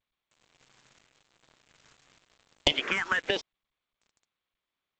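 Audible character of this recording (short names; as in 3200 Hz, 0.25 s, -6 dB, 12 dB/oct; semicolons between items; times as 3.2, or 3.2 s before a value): phasing stages 4, 0.91 Hz, lowest notch 600–2200 Hz; a quantiser's noise floor 8-bit, dither none; G.722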